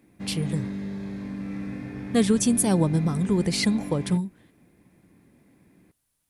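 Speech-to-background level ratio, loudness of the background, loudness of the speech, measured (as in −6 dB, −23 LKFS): 10.0 dB, −34.5 LKFS, −24.5 LKFS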